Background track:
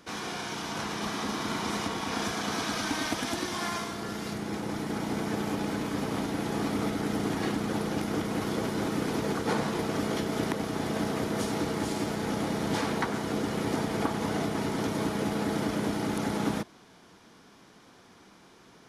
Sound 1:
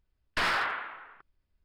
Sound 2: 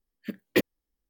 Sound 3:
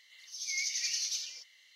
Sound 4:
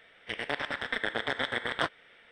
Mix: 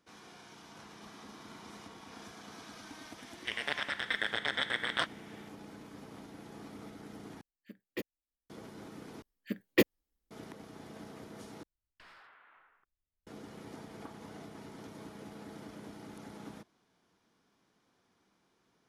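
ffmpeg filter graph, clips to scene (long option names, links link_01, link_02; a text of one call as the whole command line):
ffmpeg -i bed.wav -i cue0.wav -i cue1.wav -i cue2.wav -i cue3.wav -filter_complex "[2:a]asplit=2[link_01][link_02];[0:a]volume=-18.5dB[link_03];[4:a]tiltshelf=frequency=1300:gain=-5.5[link_04];[1:a]acompressor=threshold=-40dB:ratio=6:attack=3.2:release=140:knee=1:detection=peak[link_05];[link_03]asplit=4[link_06][link_07][link_08][link_09];[link_06]atrim=end=7.414[link_10];[link_01]atrim=end=1.09,asetpts=PTS-STARTPTS,volume=-16dB[link_11];[link_07]atrim=start=8.496:end=9.224[link_12];[link_02]atrim=end=1.09,asetpts=PTS-STARTPTS,volume=-2dB[link_13];[link_08]atrim=start=10.306:end=11.634[link_14];[link_05]atrim=end=1.64,asetpts=PTS-STARTPTS,volume=-17dB[link_15];[link_09]atrim=start=13.266[link_16];[link_04]atrim=end=2.31,asetpts=PTS-STARTPTS,volume=-3dB,afade=type=in:duration=0.004:curve=hsin,afade=type=out:start_time=2.306:duration=0.004:curve=hsin,adelay=3180[link_17];[link_10][link_11]acrossfade=duration=0.004:curve1=hsin:curve2=hsin[link_18];[link_18][link_12]acrossfade=duration=0.004:curve1=hsin:curve2=hsin[link_19];[link_19][link_13]acrossfade=duration=0.004:curve1=hsin:curve2=hsin[link_20];[link_20][link_14]acrossfade=duration=0.004:curve1=hsin:curve2=hsin[link_21];[link_21][link_15]acrossfade=duration=0.004:curve1=hsin:curve2=hsin[link_22];[link_22][link_16]acrossfade=duration=0.004:curve1=hsin:curve2=hsin[link_23];[link_23][link_17]amix=inputs=2:normalize=0" out.wav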